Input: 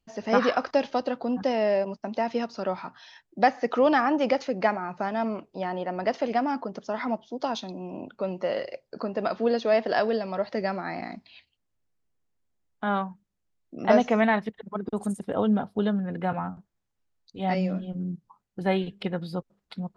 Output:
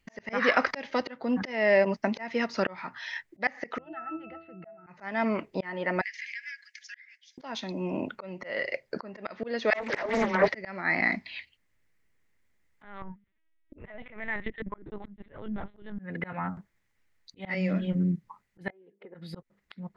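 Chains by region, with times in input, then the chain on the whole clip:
0:03.78–0:04.87: Butterworth low-pass 4,500 Hz 72 dB per octave + resonances in every octave E, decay 0.39 s
0:06.01–0:07.38: Chebyshev high-pass with heavy ripple 1,600 Hz, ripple 6 dB + downward compressor 12 to 1, threshold −50 dBFS
0:09.70–0:10.48: all-pass dispersion lows, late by 123 ms, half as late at 350 Hz + highs frequency-modulated by the lows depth 0.52 ms
0:12.84–0:15.99: downward compressor 16 to 1, threshold −30 dBFS + parametric band 920 Hz −2.5 dB 1.8 octaves + linear-prediction vocoder at 8 kHz pitch kept
0:18.70–0:19.15: four-pole ladder band-pass 490 Hz, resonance 45% + downward compressor 4 to 1, threshold −50 dBFS
whole clip: parametric band 2,000 Hz +15 dB 0.57 octaves; notch filter 730 Hz, Q 12; volume swells 444 ms; level +5.5 dB

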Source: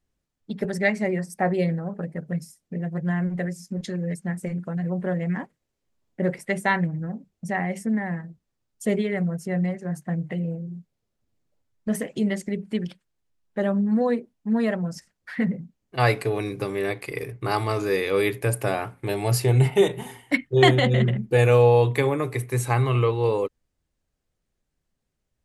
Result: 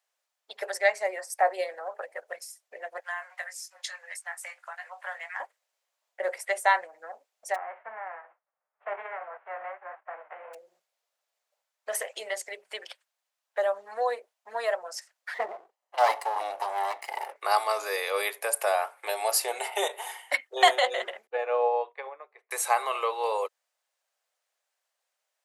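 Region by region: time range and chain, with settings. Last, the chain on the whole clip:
0:03.00–0:05.40: high-pass filter 880 Hz 24 dB per octave + double-tracking delay 19 ms −8 dB
0:07.54–0:10.53: spectral envelope flattened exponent 0.3 + Bessel low-pass filter 1,100 Hz, order 8 + flanger 1.2 Hz, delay 0.6 ms, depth 7.7 ms, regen −56%
0:15.34–0:17.36: lower of the sound and its delayed copy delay 1 ms + tilt shelving filter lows +7.5 dB, about 1,200 Hz
0:21.27–0:22.51: head-to-tape spacing loss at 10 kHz 41 dB + expander for the loud parts 2.5 to 1, over −32 dBFS
whole clip: Butterworth high-pass 590 Hz 36 dB per octave; dynamic equaliser 2,300 Hz, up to −7 dB, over −41 dBFS, Q 0.74; level +4.5 dB

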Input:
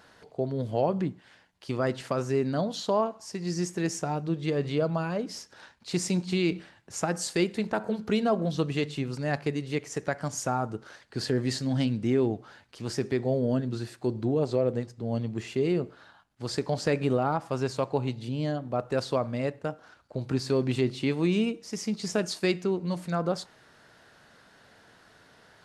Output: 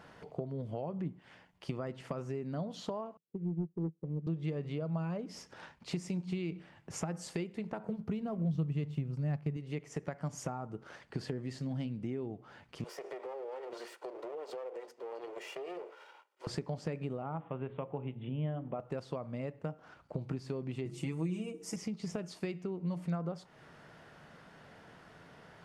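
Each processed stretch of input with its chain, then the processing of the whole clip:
0:03.17–0:04.27: Chebyshev band-pass filter 110–500 Hz, order 4 + leveller curve on the samples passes 1 + expander for the loud parts 2.5 to 1, over −43 dBFS
0:07.87–0:09.57: mu-law and A-law mismatch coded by A + parametric band 110 Hz +13 dB 2 octaves
0:12.84–0:16.47: lower of the sound and its delayed copy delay 2.1 ms + high-pass filter 410 Hz 24 dB per octave + downward compressor, threshold −40 dBFS
0:17.22–0:18.80: Butterworth low-pass 3,500 Hz 96 dB per octave + mains-hum notches 60/120/180/240/300/360/420/480/540 Hz
0:20.85–0:21.76: high shelf with overshoot 5,600 Hz +11 dB, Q 1.5 + mains-hum notches 50/100/150/200/250/300/350/400/450/500 Hz + comb filter 6.1 ms, depth 83%
whole clip: bass and treble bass 0 dB, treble −9 dB; downward compressor 6 to 1, threshold −39 dBFS; thirty-one-band graphic EQ 160 Hz +8 dB, 1,600 Hz −5 dB, 4,000 Hz −6 dB; level +2 dB

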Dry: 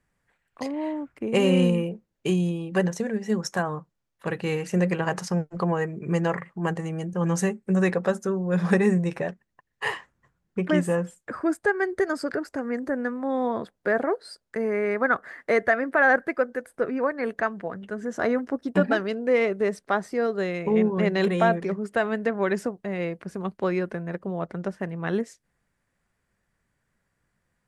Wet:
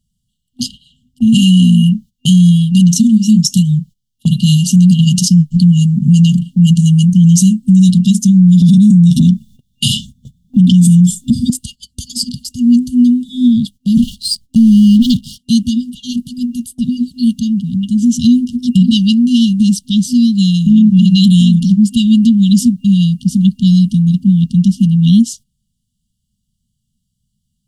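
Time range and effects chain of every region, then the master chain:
0:08.62–0:11.50: bass and treble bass +10 dB, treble +7 dB + hollow resonant body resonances 310/1,200/3,500 Hz, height 16 dB, ringing for 20 ms
0:13.97–0:15.38: low-shelf EQ 180 Hz +11 dB + leveller curve on the samples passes 1
whole clip: brick-wall band-stop 250–2,800 Hz; noise gate −53 dBFS, range −16 dB; boost into a limiter +25 dB; level −1 dB

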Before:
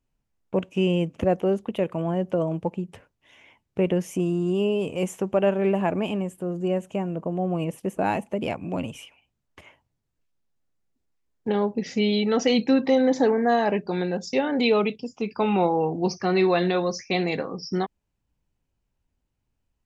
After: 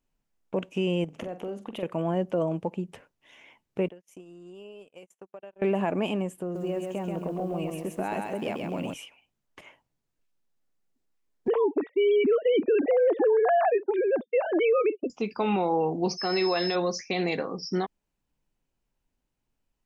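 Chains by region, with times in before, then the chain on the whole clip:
0:01.04–0:01.83: downward compressor 16 to 1, threshold −30 dBFS + flutter between parallel walls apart 7.7 metres, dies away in 0.25 s
0:03.88–0:05.62: low-shelf EQ 250 Hz −11.5 dB + downward compressor 12 to 1, threshold −38 dBFS + noise gate −42 dBFS, range −41 dB
0:06.42–0:08.94: downward compressor 4 to 1, threshold −27 dBFS + feedback echo at a low word length 133 ms, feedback 35%, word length 10 bits, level −3.5 dB
0:11.48–0:15.10: three sine waves on the formant tracks + downward expander −34 dBFS + tilt shelving filter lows +5.5 dB, about 1,300 Hz
0:16.17–0:16.74: high-pass filter 310 Hz 6 dB per octave + steady tone 5,200 Hz −31 dBFS
whole clip: brickwall limiter −16.5 dBFS; parametric band 77 Hz −11.5 dB 1.4 octaves

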